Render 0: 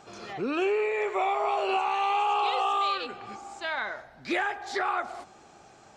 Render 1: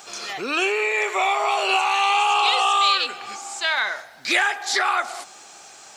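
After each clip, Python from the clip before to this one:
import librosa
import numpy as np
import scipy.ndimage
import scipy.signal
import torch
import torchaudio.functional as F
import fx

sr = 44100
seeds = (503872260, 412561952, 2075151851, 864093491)

y = fx.tilt_eq(x, sr, slope=4.5)
y = y * librosa.db_to_amplitude(6.5)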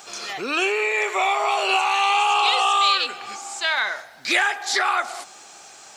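y = x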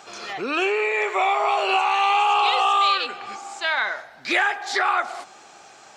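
y = fx.lowpass(x, sr, hz=2200.0, slope=6)
y = y * librosa.db_to_amplitude(1.5)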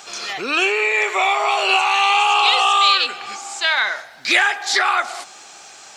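y = fx.high_shelf(x, sr, hz=2100.0, db=12.0)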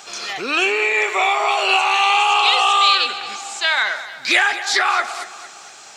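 y = fx.echo_feedback(x, sr, ms=227, feedback_pct=44, wet_db=-14.5)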